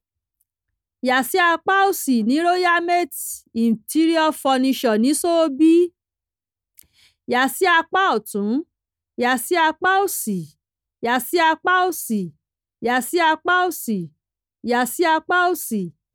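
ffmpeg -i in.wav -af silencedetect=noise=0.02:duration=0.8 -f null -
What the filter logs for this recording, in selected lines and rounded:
silence_start: 0.00
silence_end: 1.03 | silence_duration: 1.03
silence_start: 5.88
silence_end: 6.79 | silence_duration: 0.91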